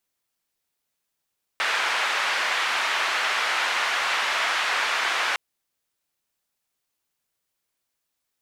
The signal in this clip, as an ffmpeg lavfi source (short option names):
-f lavfi -i "anoisesrc=c=white:d=3.76:r=44100:seed=1,highpass=f=1000,lowpass=f=2100,volume=-7.3dB"